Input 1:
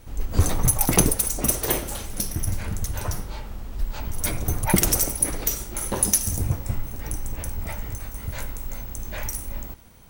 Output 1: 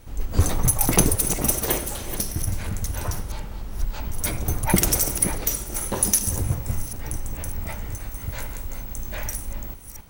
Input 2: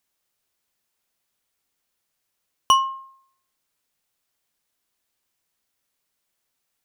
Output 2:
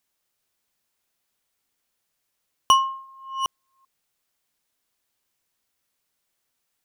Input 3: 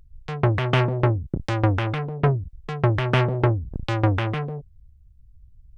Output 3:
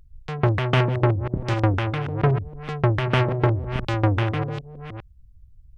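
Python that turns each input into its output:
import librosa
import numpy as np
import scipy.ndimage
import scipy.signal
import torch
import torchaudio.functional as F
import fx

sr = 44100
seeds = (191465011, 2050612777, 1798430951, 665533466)

y = fx.reverse_delay(x, sr, ms=385, wet_db=-10.0)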